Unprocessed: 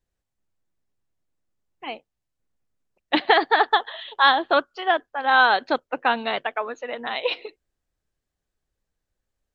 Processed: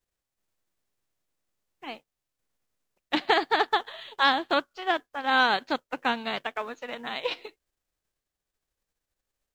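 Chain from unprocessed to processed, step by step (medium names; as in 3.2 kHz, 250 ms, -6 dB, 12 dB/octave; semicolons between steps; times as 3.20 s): formants flattened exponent 0.6; trim -5.5 dB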